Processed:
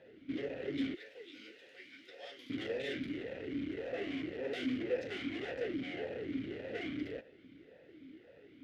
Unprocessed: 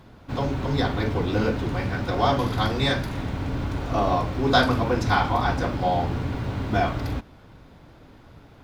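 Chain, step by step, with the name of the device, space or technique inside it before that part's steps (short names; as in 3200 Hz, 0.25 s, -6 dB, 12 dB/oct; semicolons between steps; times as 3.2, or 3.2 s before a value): 0.94–2.5 differentiator; talk box (tube stage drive 31 dB, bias 0.55; vowel sweep e-i 1.8 Hz); gain +7.5 dB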